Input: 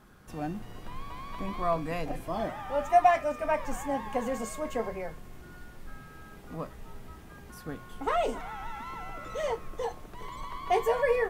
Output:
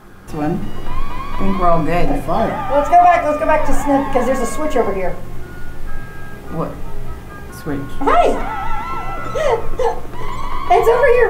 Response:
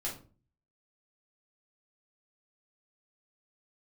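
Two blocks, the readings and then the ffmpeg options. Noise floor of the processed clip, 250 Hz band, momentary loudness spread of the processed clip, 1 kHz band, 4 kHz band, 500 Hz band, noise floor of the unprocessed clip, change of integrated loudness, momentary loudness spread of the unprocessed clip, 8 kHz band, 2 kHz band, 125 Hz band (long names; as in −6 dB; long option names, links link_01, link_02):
−31 dBFS, +16.5 dB, 20 LU, +13.5 dB, +12.0 dB, +14.5 dB, −49 dBFS, +14.0 dB, 23 LU, +12.0 dB, +14.0 dB, +17.0 dB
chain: -filter_complex "[0:a]asplit=2[link_01][link_02];[1:a]atrim=start_sample=2205,lowpass=2900[link_03];[link_02][link_03]afir=irnorm=-1:irlink=0,volume=-4.5dB[link_04];[link_01][link_04]amix=inputs=2:normalize=0,alimiter=level_in=13.5dB:limit=-1dB:release=50:level=0:latency=1,volume=-1dB"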